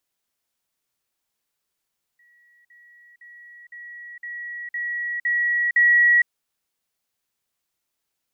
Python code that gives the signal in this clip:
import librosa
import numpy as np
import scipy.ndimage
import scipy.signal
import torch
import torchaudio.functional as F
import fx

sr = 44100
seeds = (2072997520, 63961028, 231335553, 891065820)

y = fx.level_ladder(sr, hz=1920.0, from_db=-54.5, step_db=6.0, steps=8, dwell_s=0.46, gap_s=0.05)